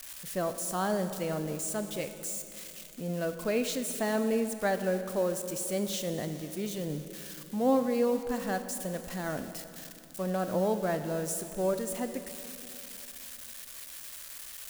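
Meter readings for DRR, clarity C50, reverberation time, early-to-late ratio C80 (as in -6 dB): 8.5 dB, 9.0 dB, 3.0 s, 10.0 dB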